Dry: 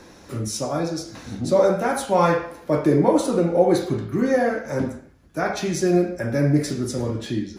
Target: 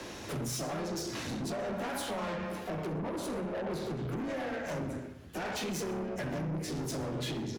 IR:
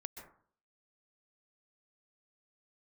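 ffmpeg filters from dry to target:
-filter_complex "[0:a]equalizer=frequency=2900:width_type=o:width=0.68:gain=6.5,bandreject=frequency=57.03:width_type=h:width=4,bandreject=frequency=114.06:width_type=h:width=4,bandreject=frequency=171.09:width_type=h:width=4,bandreject=frequency=228.12:width_type=h:width=4,acrossover=split=160[link_01][link_02];[link_02]acompressor=threshold=-29dB:ratio=5[link_03];[link_01][link_03]amix=inputs=2:normalize=0,afreqshift=15,acompressor=threshold=-28dB:ratio=6,asplit=2[link_04][link_05];[link_05]asetrate=52444,aresample=44100,atempo=0.840896,volume=-6dB[link_06];[link_04][link_06]amix=inputs=2:normalize=0,asoftclip=type=tanh:threshold=-35.5dB,aecho=1:1:64|128|192|256:0.106|0.0561|0.0298|0.0158,asplit=2[link_07][link_08];[1:a]atrim=start_sample=2205[link_09];[link_08][link_09]afir=irnorm=-1:irlink=0,volume=-5dB[link_10];[link_07][link_10]amix=inputs=2:normalize=0"

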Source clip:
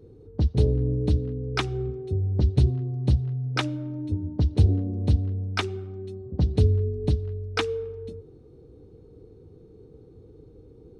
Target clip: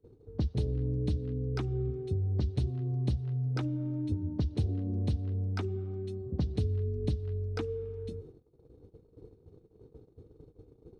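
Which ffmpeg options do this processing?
ffmpeg -i in.wav -filter_complex "[0:a]acrossover=split=350|1200[link_01][link_02][link_03];[link_01]acompressor=threshold=-29dB:ratio=4[link_04];[link_02]acompressor=threshold=-46dB:ratio=4[link_05];[link_03]acompressor=threshold=-51dB:ratio=4[link_06];[link_04][link_05][link_06]amix=inputs=3:normalize=0,agate=range=-22dB:threshold=-47dB:ratio=16:detection=peak" out.wav

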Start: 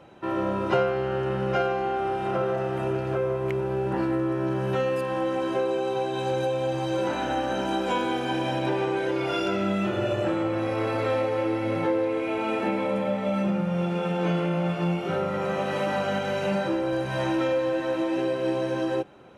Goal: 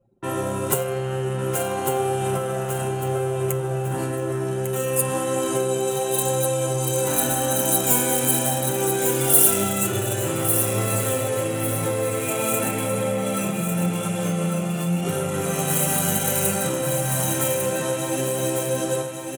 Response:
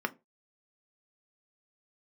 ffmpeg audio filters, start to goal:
-filter_complex "[0:a]anlmdn=1,bass=frequency=250:gain=13,treble=frequency=4000:gain=8,aecho=1:1:7.5:0.52,acrossover=split=1800[link_01][link_02];[link_02]aeval=exprs='0.0224*(abs(mod(val(0)/0.0224+3,4)-2)-1)':channel_layout=same[link_03];[link_01][link_03]amix=inputs=2:normalize=0,highshelf=frequency=2400:gain=7.5,acompressor=threshold=-19dB:ratio=12,flanger=delay=8.2:depth=6.3:regen=76:speed=0.92:shape=triangular,aexciter=amount=8.1:drive=9:freq=7300,highpass=frequency=140:poles=1,asplit=2[link_04][link_05];[link_05]aecho=0:1:1150|2300|3450|4600:0.473|0.161|0.0547|0.0186[link_06];[link_04][link_06]amix=inputs=2:normalize=0,volume=4dB"

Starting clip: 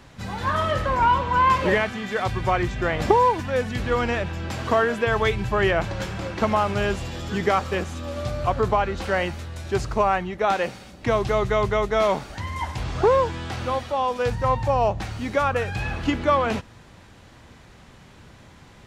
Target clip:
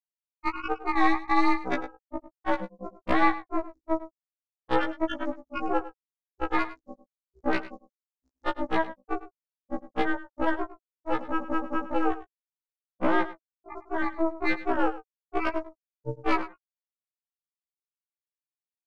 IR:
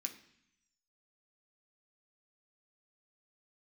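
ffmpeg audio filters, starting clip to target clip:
-af "afftfilt=real='re*gte(hypot(re,im),0.708)':imag='im*gte(hypot(re,im),0.708)':win_size=1024:overlap=0.75,highpass=600,highshelf=frequency=2400:gain=8.5,aeval=exprs='val(0)*sin(2*PI*160*n/s)':channel_layout=same,acompressor=threshold=-29dB:ratio=4,aexciter=amount=14.7:drive=4.8:freq=4600,acontrast=61,aresample=16000,aeval=exprs='clip(val(0),-1,0.0841)':channel_layout=same,aresample=44100,aeval=exprs='0.211*(cos(1*acos(clip(val(0)/0.211,-1,1)))-cos(1*PI/2))+0.0841*(cos(4*acos(clip(val(0)/0.211,-1,1)))-cos(4*PI/2))':channel_layout=same,aecho=1:1:103:0.168,afftfilt=real='re*1.73*eq(mod(b,3),0)':imag='im*1.73*eq(mod(b,3),0)':win_size=2048:overlap=0.75"

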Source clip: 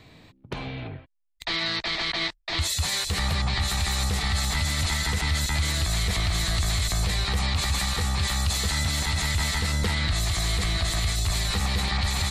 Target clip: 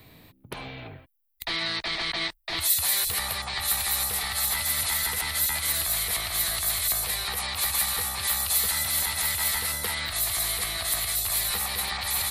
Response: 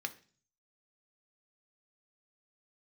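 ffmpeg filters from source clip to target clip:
-filter_complex "[0:a]acrossover=split=440[link_01][link_02];[link_01]acompressor=threshold=-38dB:ratio=16[link_03];[link_02]aexciter=amount=9.6:drive=5.4:freq=9800[link_04];[link_03][link_04]amix=inputs=2:normalize=0,volume=-1.5dB"

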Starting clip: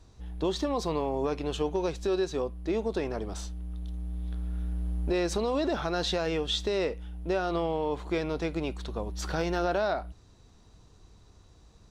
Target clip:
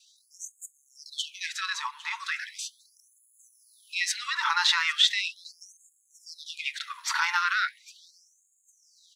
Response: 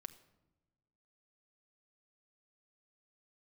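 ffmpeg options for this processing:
-filter_complex "[0:a]adynamicequalizer=threshold=0.00112:dfrequency=2000:dqfactor=5.4:tfrequency=2000:tqfactor=5.4:attack=5:release=100:ratio=0.375:range=4:mode=boostabove:tftype=bell,atempo=1.3,aecho=1:1:804|1608|2412:0.112|0.0494|0.0217,asplit=2[link_01][link_02];[1:a]atrim=start_sample=2205,highshelf=frequency=4800:gain=-12[link_03];[link_02][link_03]afir=irnorm=-1:irlink=0,volume=2.5dB[link_04];[link_01][link_04]amix=inputs=2:normalize=0,afftfilt=real='re*gte(b*sr/1024,820*pow(6600/820,0.5+0.5*sin(2*PI*0.38*pts/sr)))':imag='im*gte(b*sr/1024,820*pow(6600/820,0.5+0.5*sin(2*PI*0.38*pts/sr)))':win_size=1024:overlap=0.75,volume=7.5dB"

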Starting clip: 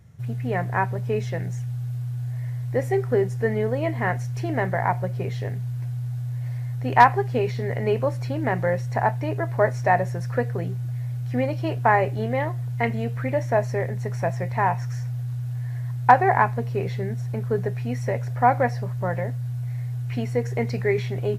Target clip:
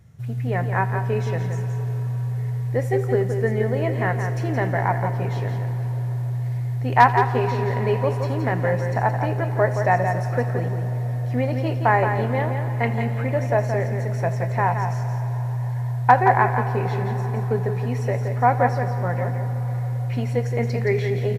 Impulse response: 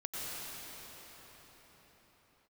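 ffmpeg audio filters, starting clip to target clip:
-filter_complex "[0:a]aecho=1:1:171:0.447,asplit=2[link_01][link_02];[1:a]atrim=start_sample=2205,adelay=82[link_03];[link_02][link_03]afir=irnorm=-1:irlink=0,volume=-14dB[link_04];[link_01][link_04]amix=inputs=2:normalize=0"

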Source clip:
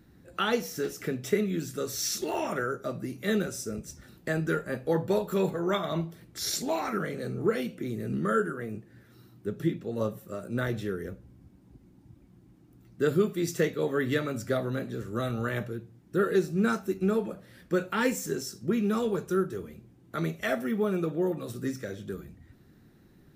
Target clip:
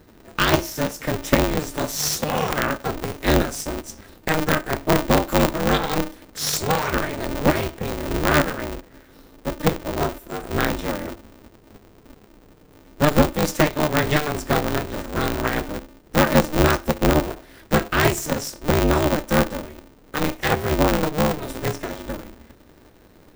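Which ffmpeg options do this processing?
ffmpeg -i in.wav -af "aeval=exprs='0.237*(cos(1*acos(clip(val(0)/0.237,-1,1)))-cos(1*PI/2))+0.0596*(cos(6*acos(clip(val(0)/0.237,-1,1)))-cos(6*PI/2))+0.0188*(cos(8*acos(clip(val(0)/0.237,-1,1)))-cos(8*PI/2))':channel_layout=same,aeval=exprs='val(0)*sgn(sin(2*PI*150*n/s))':channel_layout=same,volume=7dB" out.wav

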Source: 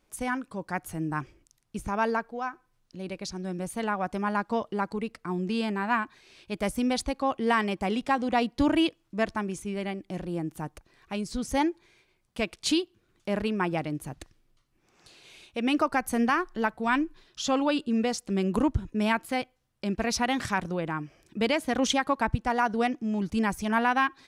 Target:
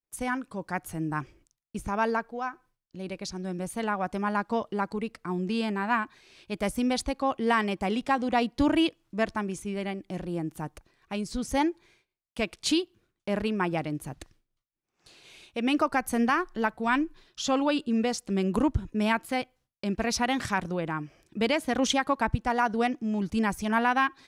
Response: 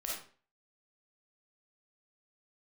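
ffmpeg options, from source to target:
-af "agate=range=-33dB:threshold=-54dB:ratio=3:detection=peak"

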